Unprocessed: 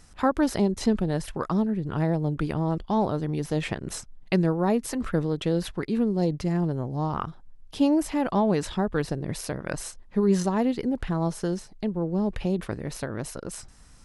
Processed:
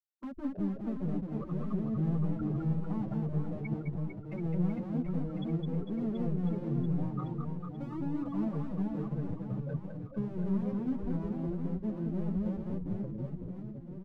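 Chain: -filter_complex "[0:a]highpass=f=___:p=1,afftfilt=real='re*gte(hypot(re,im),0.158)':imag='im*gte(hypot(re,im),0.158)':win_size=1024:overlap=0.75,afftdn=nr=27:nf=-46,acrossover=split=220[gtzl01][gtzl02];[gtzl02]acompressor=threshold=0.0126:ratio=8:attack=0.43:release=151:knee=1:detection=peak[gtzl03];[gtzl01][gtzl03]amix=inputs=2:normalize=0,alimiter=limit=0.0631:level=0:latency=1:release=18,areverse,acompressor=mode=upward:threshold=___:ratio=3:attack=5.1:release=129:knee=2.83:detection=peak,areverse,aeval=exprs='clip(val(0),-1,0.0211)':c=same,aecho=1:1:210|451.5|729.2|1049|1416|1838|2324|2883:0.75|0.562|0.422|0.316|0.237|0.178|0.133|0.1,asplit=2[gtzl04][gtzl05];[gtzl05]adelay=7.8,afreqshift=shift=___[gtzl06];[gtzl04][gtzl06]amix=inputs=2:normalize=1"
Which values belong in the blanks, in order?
41, 0.0158, 1.7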